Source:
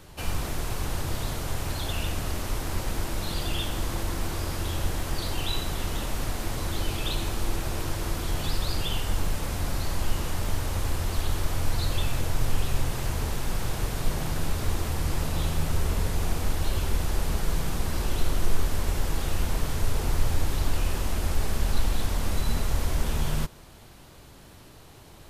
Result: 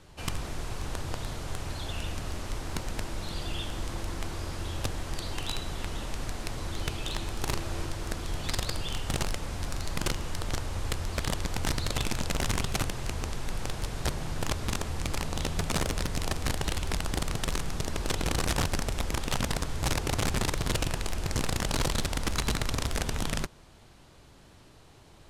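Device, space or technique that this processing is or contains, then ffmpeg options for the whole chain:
overflowing digital effects unit: -filter_complex "[0:a]aeval=exprs='(mod(7.5*val(0)+1,2)-1)/7.5':c=same,lowpass=9000,asettb=1/sr,asplit=3[s0][s1][s2];[s0]atrim=end=7.444[s3];[s1]atrim=start=7.44:end=7.86,asetpts=PTS-STARTPTS,afade=t=in:d=0.004:c=qsin,afade=t=out:st=0.416:d=0.004:c=qsin,asplit=2[s4][s5];[s5]adelay=36,volume=0.631[s6];[s4][s6]amix=inputs=2:normalize=0,atrim=end_sample=18522[s7];[s2]atrim=start=7.856[s8];[s3][s7]acrossfade=d=0.004:c1=hsin:c2=qsin[s9];[s9][s8]acrossfade=d=0.004:c1=qsin:c2=hsin,volume=0.562"

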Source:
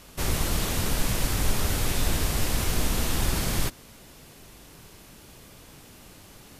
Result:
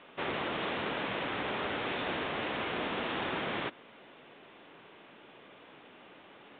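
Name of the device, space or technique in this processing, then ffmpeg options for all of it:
telephone: -af "highpass=330,lowpass=3200" -ar 8000 -c:a pcm_mulaw

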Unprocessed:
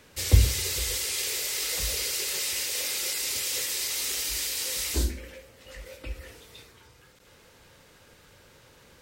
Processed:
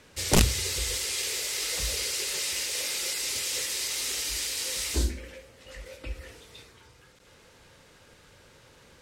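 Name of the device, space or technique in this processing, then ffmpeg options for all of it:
overflowing digital effects unit: -af "aeval=exprs='(mod(4.22*val(0)+1,2)-1)/4.22':c=same,lowpass=11000"

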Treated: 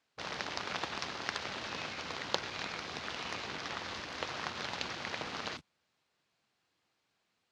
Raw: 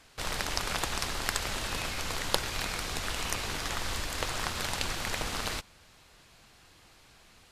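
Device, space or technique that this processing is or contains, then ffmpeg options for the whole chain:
over-cleaned archive recording: -af "highpass=150,lowpass=6800,afwtdn=0.01,volume=0.631"

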